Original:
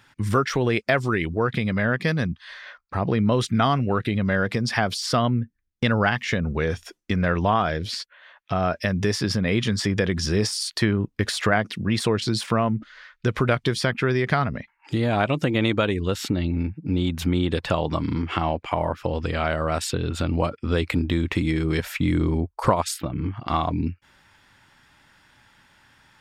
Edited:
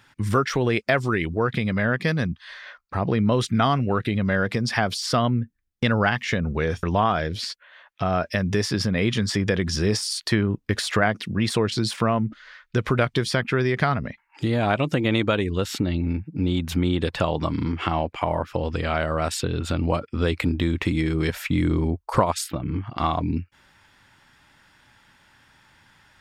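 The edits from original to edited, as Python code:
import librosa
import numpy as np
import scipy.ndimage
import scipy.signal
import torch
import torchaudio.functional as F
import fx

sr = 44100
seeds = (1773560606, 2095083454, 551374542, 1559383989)

y = fx.edit(x, sr, fx.cut(start_s=6.83, length_s=0.5), tone=tone)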